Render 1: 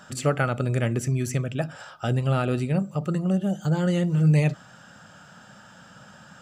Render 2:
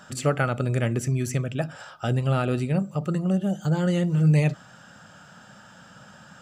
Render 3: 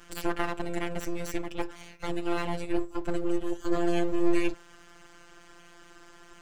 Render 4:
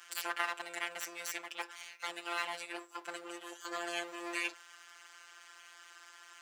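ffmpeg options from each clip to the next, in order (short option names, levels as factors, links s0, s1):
-af anull
-af "afftfilt=real='hypot(re,im)*cos(PI*b)':imag='0':win_size=1024:overlap=0.75,aeval=exprs='abs(val(0))':c=same"
-af "highpass=1200,volume=1.19"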